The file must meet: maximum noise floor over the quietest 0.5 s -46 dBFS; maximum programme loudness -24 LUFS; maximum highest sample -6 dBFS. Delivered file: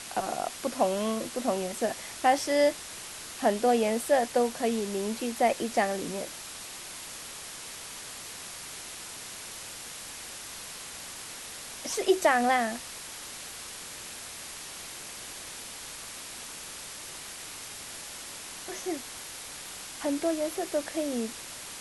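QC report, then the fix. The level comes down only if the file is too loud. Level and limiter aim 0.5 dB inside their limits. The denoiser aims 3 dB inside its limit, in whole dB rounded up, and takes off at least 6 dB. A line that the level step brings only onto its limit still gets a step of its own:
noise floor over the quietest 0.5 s -42 dBFS: fail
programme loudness -31.5 LUFS: OK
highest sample -11.5 dBFS: OK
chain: denoiser 7 dB, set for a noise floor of -42 dBFS

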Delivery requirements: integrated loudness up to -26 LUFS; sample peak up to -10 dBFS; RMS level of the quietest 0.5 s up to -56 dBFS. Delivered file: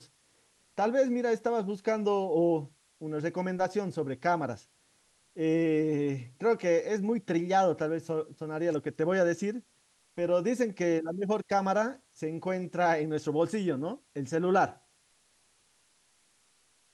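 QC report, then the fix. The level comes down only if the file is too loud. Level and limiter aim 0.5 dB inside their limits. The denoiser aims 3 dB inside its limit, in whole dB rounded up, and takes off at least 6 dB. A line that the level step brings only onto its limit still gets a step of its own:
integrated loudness -30.0 LUFS: OK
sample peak -14.0 dBFS: OK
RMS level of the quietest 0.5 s -68 dBFS: OK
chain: none

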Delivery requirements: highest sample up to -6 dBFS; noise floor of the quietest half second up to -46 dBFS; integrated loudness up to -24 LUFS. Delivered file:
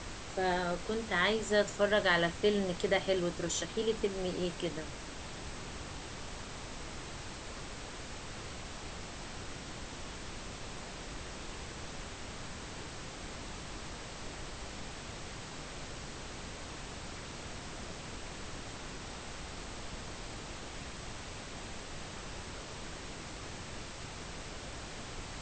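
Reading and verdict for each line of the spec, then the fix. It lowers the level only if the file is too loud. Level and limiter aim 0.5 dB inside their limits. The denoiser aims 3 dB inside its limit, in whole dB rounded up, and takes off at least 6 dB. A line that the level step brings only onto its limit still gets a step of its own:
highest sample -16.0 dBFS: OK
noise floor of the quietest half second -44 dBFS: fail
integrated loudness -38.0 LUFS: OK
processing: denoiser 6 dB, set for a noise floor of -44 dBFS

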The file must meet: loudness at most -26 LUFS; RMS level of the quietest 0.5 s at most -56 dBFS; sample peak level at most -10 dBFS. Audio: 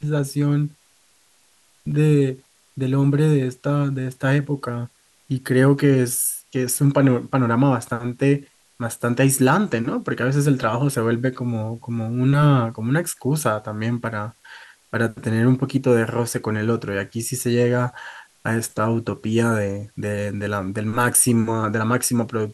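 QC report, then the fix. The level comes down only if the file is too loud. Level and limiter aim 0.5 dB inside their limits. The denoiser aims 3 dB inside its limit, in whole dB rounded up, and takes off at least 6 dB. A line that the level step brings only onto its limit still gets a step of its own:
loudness -21.0 LUFS: fail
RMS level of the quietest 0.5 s -58 dBFS: OK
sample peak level -5.0 dBFS: fail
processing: gain -5.5 dB

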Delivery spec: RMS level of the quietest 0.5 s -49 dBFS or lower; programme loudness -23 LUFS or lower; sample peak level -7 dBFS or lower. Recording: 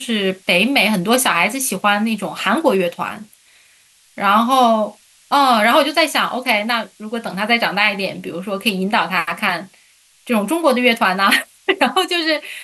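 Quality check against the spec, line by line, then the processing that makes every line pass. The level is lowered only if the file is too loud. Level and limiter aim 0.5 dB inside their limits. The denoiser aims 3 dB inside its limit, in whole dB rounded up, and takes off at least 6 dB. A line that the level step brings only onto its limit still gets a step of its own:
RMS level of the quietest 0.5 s -53 dBFS: OK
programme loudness -16.5 LUFS: fail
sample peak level -2.5 dBFS: fail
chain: gain -7 dB

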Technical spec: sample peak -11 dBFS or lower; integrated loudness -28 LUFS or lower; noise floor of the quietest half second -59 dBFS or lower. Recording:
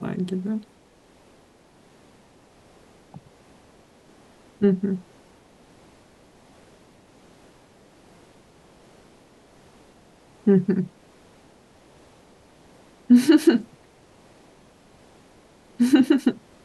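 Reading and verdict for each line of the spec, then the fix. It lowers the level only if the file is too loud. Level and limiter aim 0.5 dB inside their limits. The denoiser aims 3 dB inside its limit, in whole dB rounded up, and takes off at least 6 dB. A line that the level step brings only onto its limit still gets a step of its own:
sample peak -5.5 dBFS: fail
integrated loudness -21.0 LUFS: fail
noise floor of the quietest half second -55 dBFS: fail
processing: gain -7.5 dB

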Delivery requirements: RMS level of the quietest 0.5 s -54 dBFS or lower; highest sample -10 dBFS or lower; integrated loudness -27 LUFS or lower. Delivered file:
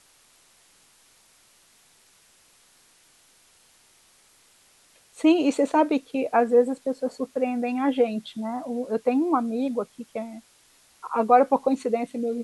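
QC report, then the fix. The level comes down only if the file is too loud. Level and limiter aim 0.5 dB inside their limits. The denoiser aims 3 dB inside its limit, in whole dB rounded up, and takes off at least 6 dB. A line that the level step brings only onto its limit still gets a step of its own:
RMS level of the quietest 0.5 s -59 dBFS: OK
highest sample -6.5 dBFS: fail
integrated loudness -24.0 LUFS: fail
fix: gain -3.5 dB; limiter -10.5 dBFS

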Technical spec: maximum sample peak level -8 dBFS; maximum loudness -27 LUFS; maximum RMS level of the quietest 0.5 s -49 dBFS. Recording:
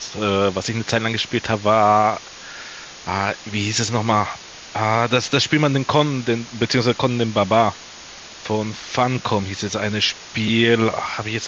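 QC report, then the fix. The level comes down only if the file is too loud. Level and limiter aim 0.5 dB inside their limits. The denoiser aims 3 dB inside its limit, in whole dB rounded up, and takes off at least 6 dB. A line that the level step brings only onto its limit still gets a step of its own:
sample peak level -2.5 dBFS: fail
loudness -19.5 LUFS: fail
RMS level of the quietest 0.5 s -39 dBFS: fail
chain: denoiser 6 dB, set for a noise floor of -39 dBFS; gain -8 dB

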